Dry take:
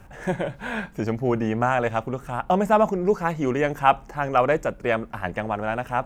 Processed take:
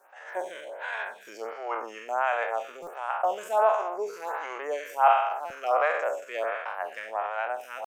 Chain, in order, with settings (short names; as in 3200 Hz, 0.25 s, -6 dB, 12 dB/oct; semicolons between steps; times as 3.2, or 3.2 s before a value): spectral trails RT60 0.83 s; HPF 530 Hz 24 dB/oct; tempo 0.77×; stuck buffer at 2.82/5.45, samples 256, times 8; photocell phaser 1.4 Hz; gain -3.5 dB